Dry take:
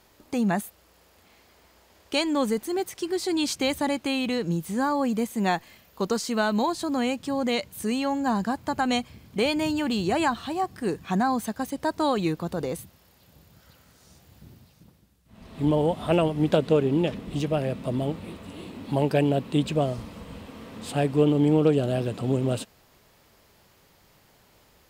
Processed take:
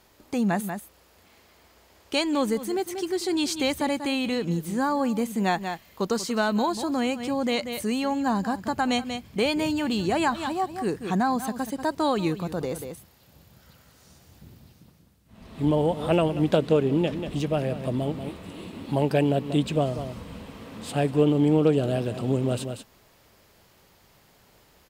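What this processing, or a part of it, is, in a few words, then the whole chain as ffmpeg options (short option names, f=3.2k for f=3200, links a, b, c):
ducked delay: -filter_complex "[0:a]asplit=3[a][b][c];[b]adelay=188,volume=-7dB[d];[c]apad=whole_len=1106115[e];[d][e]sidechaincompress=threshold=-34dB:ratio=8:attack=16:release=115[f];[a][f]amix=inputs=2:normalize=0"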